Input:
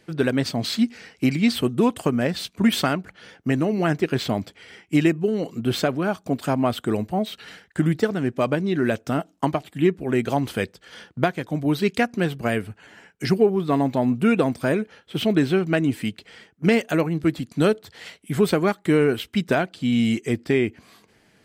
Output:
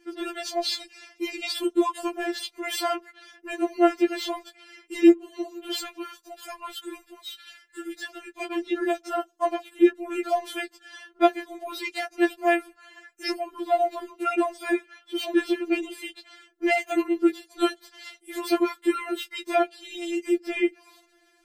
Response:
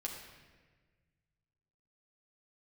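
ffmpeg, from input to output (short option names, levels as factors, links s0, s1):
-filter_complex "[0:a]asettb=1/sr,asplit=3[s0][s1][s2];[s0]atrim=end=5.804[s3];[s1]atrim=start=5.8:end=8.42,asetpts=PTS-STARTPTS,afade=t=in:d=0.004:c=qsin,afade=t=out:st=2.616:d=0.004:c=qsin,equalizer=f=490:w=0.51:g=-15[s4];[s2]atrim=start=8.416[s5];[s3][s4]acrossfade=d=0.004:c1=hsin:c2=qsin[s6];[s6][s5]acrossfade=d=0.004:c1=qsin:c2=hsin,afftfilt=real='re*4*eq(mod(b,16),0)':imag='im*4*eq(mod(b,16),0)':win_size=2048:overlap=0.75"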